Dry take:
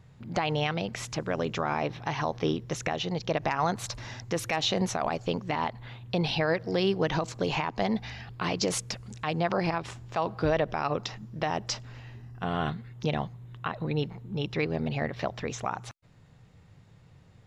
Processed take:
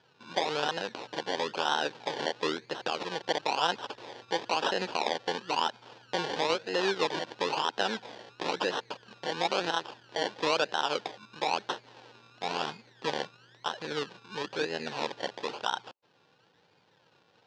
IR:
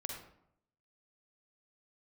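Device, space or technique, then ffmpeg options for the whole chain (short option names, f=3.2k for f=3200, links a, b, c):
circuit-bent sampling toy: -af "acrusher=samples=27:mix=1:aa=0.000001:lfo=1:lforange=16.2:lforate=1,highpass=570,equalizer=f=660:t=q:w=4:g=-8,equalizer=f=1.2k:t=q:w=4:g=-8,equalizer=f=2.1k:t=q:w=4:g=-9,lowpass=f=4.9k:w=0.5412,lowpass=f=4.9k:w=1.3066,volume=5.5dB"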